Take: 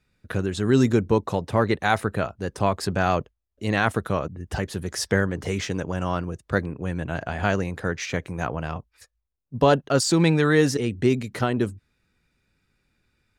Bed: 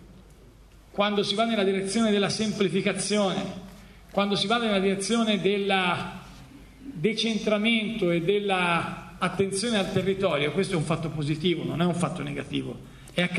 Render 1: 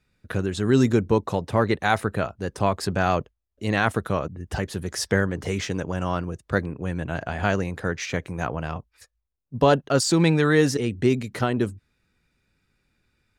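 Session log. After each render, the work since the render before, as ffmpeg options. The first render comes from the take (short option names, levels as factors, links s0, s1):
-af anull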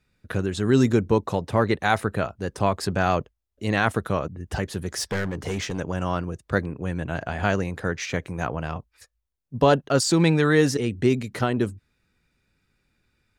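-filter_complex "[0:a]asettb=1/sr,asplit=3[s0][s1][s2];[s0]atrim=end=4.914[s3];[s1]atrim=start=4.91:end=5.79,asetpts=PTS-STARTPTS,afade=t=in:d=0.004:c=qsin,afade=t=out:st=0.876:d=0.004:c=qsin,asoftclip=type=hard:threshold=0.075[s4];[s2]atrim=start=5.786[s5];[s3][s4]acrossfade=d=0.004:c1=hsin:c2=qsin[s6];[s6][s5]acrossfade=d=0.004:c1=qsin:c2=hsin"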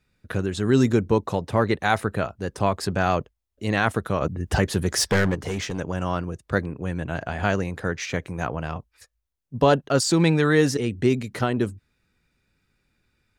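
-filter_complex "[0:a]asettb=1/sr,asplit=3[s0][s1][s2];[s0]atrim=end=4.214[s3];[s1]atrim=start=4.21:end=5.35,asetpts=PTS-STARTPTS,afade=t=in:d=0.004:c=qsin,afade=t=out:st=1.136:d=0.004:c=qsin,acontrast=69[s4];[s2]atrim=start=5.346[s5];[s3][s4]acrossfade=d=0.004:c1=hsin:c2=qsin[s6];[s6][s5]acrossfade=d=0.004:c1=qsin:c2=hsin"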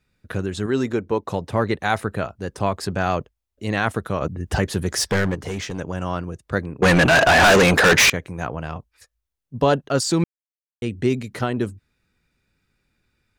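-filter_complex "[0:a]asettb=1/sr,asplit=3[s0][s1][s2];[s0]atrim=end=0.664[s3];[s1]atrim=start=0.66:end=1.27,asetpts=PTS-STARTPTS,afade=t=in:d=0.004:c=qsin,afade=t=out:st=0.606:d=0.004:c=qsin,bass=f=250:g=-9,treble=f=4000:g=-7[s4];[s2]atrim=start=1.266[s5];[s3][s4]acrossfade=d=0.004:c1=hsin:c2=qsin[s6];[s6][s5]acrossfade=d=0.004:c1=qsin:c2=hsin,asettb=1/sr,asplit=3[s7][s8][s9];[s7]atrim=end=6.824[s10];[s8]atrim=start=6.82:end=8.1,asetpts=PTS-STARTPTS,afade=t=in:d=0.004:c=qsin,afade=t=out:st=1.276:d=0.004:c=qsin,asplit=2[s11][s12];[s12]highpass=f=720:p=1,volume=79.4,asoftclip=type=tanh:threshold=0.531[s13];[s11][s13]amix=inputs=2:normalize=0,lowpass=f=6600:p=1,volume=0.501[s14];[s9]atrim=start=8.096[s15];[s10][s14]acrossfade=d=0.004:c1=hsin:c2=qsin[s16];[s16][s15]acrossfade=d=0.004:c1=qsin:c2=hsin,asplit=3[s17][s18][s19];[s17]atrim=end=10.24,asetpts=PTS-STARTPTS,afade=t=out:st=10.236:d=0.004:c=hsin[s20];[s18]atrim=start=10.24:end=10.82,asetpts=PTS-STARTPTS,volume=0[s21];[s19]atrim=start=10.82,asetpts=PTS-STARTPTS,afade=t=in:d=0.004:c=hsin[s22];[s20][s21][s22]concat=n=3:v=0:a=1"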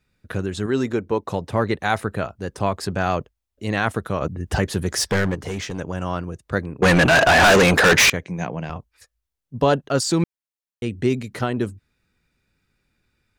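-filter_complex "[0:a]asettb=1/sr,asplit=3[s0][s1][s2];[s0]atrim=end=8.234[s3];[s1]atrim=start=8.23:end=8.7,asetpts=PTS-STARTPTS,afade=t=in:d=0.004:c=qsin,afade=t=out:st=0.466:d=0.004:c=qsin,highpass=140,equalizer=f=180:t=q:w=4:g=9,equalizer=f=1300:t=q:w=4:g=-8,equalizer=f=2200:t=q:w=4:g=5,equalizer=f=6100:t=q:w=4:g=6,lowpass=f=7200:w=0.5412,lowpass=f=7200:w=1.3066[s4];[s2]atrim=start=8.696[s5];[s3][s4]acrossfade=d=0.004:c1=hsin:c2=qsin[s6];[s6][s5]acrossfade=d=0.004:c1=qsin:c2=hsin"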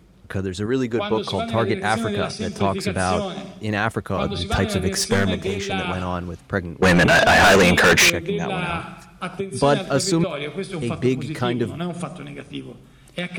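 -filter_complex "[1:a]volume=0.708[s0];[0:a][s0]amix=inputs=2:normalize=0"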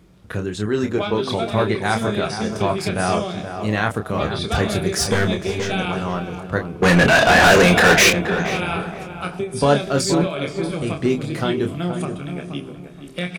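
-filter_complex "[0:a]asplit=2[s0][s1];[s1]adelay=28,volume=0.501[s2];[s0][s2]amix=inputs=2:normalize=0,asplit=2[s3][s4];[s4]adelay=475,lowpass=f=1500:p=1,volume=0.398,asplit=2[s5][s6];[s6]adelay=475,lowpass=f=1500:p=1,volume=0.32,asplit=2[s7][s8];[s8]adelay=475,lowpass=f=1500:p=1,volume=0.32,asplit=2[s9][s10];[s10]adelay=475,lowpass=f=1500:p=1,volume=0.32[s11];[s5][s7][s9][s11]amix=inputs=4:normalize=0[s12];[s3][s12]amix=inputs=2:normalize=0"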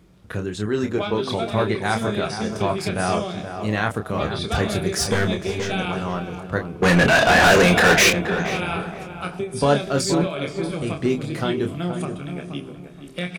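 -af "volume=0.794"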